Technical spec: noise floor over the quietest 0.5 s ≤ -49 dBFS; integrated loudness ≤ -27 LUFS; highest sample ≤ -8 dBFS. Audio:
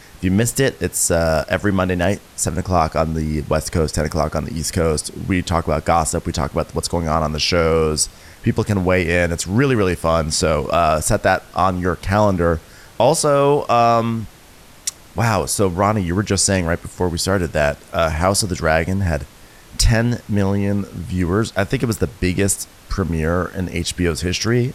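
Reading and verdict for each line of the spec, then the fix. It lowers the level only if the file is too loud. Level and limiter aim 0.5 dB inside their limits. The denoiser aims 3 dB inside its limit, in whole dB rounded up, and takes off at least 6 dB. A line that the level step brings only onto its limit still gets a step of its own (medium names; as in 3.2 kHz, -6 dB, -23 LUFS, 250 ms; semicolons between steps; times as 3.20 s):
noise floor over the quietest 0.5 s -44 dBFS: fail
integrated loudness -18.5 LUFS: fail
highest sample -3.5 dBFS: fail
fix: trim -9 dB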